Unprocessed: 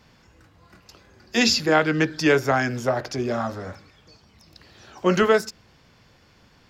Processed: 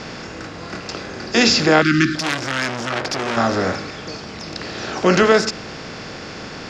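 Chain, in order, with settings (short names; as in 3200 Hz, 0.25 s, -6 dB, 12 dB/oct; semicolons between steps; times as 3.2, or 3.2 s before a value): per-bin compression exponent 0.6; LPF 7700 Hz 24 dB/oct; 1.82–2.92 spectral gain 380–1100 Hz -30 dB; in parallel at -1.5 dB: limiter -15 dBFS, peak gain reduction 11 dB; 2.15–3.37 on the sum: core saturation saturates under 3400 Hz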